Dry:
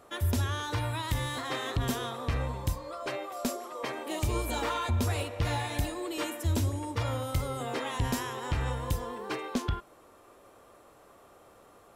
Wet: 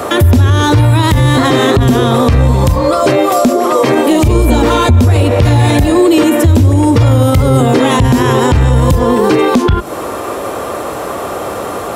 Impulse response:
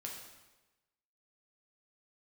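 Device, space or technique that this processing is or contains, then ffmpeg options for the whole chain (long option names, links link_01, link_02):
mastering chain: -filter_complex "[0:a]highpass=frequency=51:width=0.5412,highpass=frequency=51:width=1.3066,equalizer=frequency=440:width_type=o:width=3:gain=3,acrossover=split=370|3900[link_01][link_02][link_03];[link_01]acompressor=threshold=-28dB:ratio=4[link_04];[link_02]acompressor=threshold=-46dB:ratio=4[link_05];[link_03]acompressor=threshold=-57dB:ratio=4[link_06];[link_04][link_05][link_06]amix=inputs=3:normalize=0,acompressor=threshold=-36dB:ratio=2.5,asoftclip=type=tanh:threshold=-28.5dB,alimiter=level_in=35.5dB:limit=-1dB:release=50:level=0:latency=1,volume=-1dB"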